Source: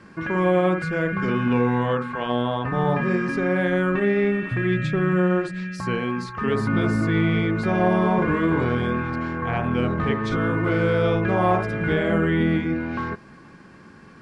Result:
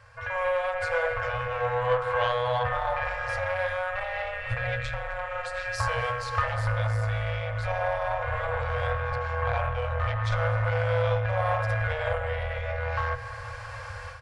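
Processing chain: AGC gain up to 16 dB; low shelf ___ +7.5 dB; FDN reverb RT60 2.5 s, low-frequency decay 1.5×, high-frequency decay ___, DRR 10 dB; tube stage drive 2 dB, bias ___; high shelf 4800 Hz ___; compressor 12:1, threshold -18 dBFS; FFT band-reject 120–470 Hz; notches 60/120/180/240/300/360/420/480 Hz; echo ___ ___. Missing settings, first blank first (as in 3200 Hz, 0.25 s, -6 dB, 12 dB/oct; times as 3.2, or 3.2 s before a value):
350 Hz, 0.65×, 0.8, +2 dB, 0.26 s, -22.5 dB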